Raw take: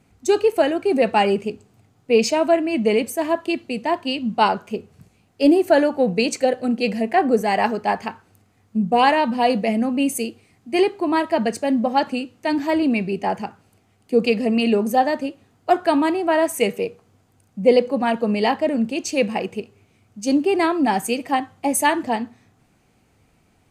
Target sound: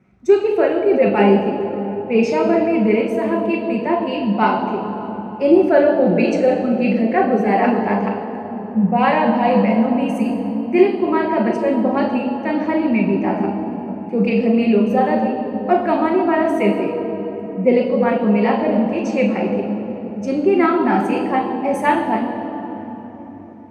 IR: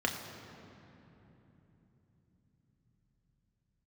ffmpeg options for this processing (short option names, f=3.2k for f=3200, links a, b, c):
-filter_complex "[0:a]lowpass=f=2.3k:p=1[a];[1:a]atrim=start_sample=2205,asetrate=33516,aresample=44100[b];[a][b]afir=irnorm=-1:irlink=0,flanger=delay=8.1:depth=2.2:regen=73:speed=1.3:shape=triangular,asettb=1/sr,asplit=3[c][d][e];[c]atrim=end=19.284[f];[d]atrim=start=19.28:end=21.24,asetpts=PTS-STARTPTS,afade=t=in:d=0.004:c=qsin,afade=t=out:st=1.956:d=0.004:c=qsin,equalizer=f=1.4k:w=7.3:g=9.5[g];[e]atrim=start=21.236[h];[f][g]acrossfade=d=0.004:c1=hsin:c2=qsin[i];[i][h]acrossfade=d=0.004:c1=qsin:c2=hsin,volume=-2dB"